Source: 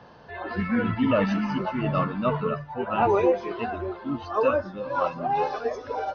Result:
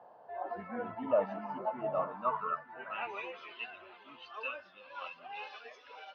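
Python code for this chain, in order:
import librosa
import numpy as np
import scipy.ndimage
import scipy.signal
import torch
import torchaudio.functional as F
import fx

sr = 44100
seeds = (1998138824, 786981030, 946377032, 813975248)

p1 = fx.filter_sweep_bandpass(x, sr, from_hz=710.0, to_hz=2800.0, start_s=1.96, end_s=3.21, q=3.4)
y = p1 + fx.echo_feedback(p1, sr, ms=910, feedback_pct=32, wet_db=-20.0, dry=0)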